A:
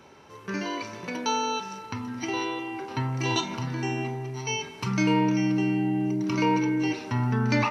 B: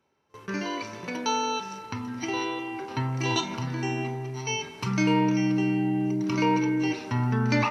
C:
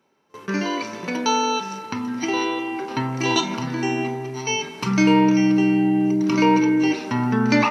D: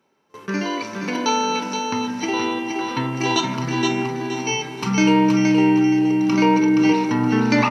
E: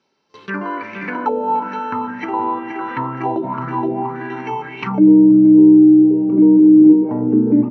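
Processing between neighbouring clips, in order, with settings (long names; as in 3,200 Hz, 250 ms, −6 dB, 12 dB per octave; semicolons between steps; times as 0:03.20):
noise gate with hold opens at −36 dBFS
low shelf with overshoot 140 Hz −8.5 dB, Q 1.5; level +6 dB
repeating echo 472 ms, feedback 28%, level −5 dB
envelope-controlled low-pass 330–4,800 Hz down, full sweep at −14 dBFS; level −2.5 dB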